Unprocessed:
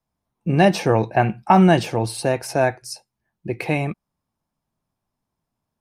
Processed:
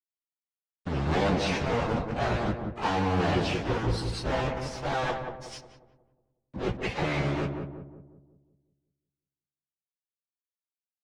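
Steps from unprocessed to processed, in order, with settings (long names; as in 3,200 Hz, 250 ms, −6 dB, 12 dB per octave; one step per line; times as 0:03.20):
sub-harmonics by changed cycles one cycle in 2, muted
in parallel at −1 dB: output level in coarse steps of 17 dB
on the sum: fuzz pedal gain 29 dB, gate −32 dBFS
time stretch by phase vocoder 1.9×
centre clipping without the shift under −46 dBFS
high-frequency loss of the air 130 metres
on a send: feedback echo with a low-pass in the loop 181 ms, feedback 49%, low-pass 940 Hz, level −4 dB
on the sum: level −6.5 dB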